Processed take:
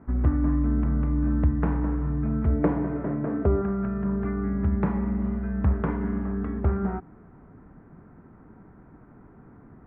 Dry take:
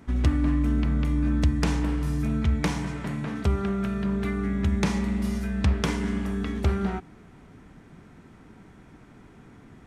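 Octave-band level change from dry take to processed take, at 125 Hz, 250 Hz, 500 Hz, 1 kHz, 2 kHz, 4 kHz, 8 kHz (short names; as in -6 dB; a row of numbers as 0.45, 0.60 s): 0.0 dB, +0.5 dB, +3.0 dB, 0.0 dB, -7.0 dB, under -25 dB, under -35 dB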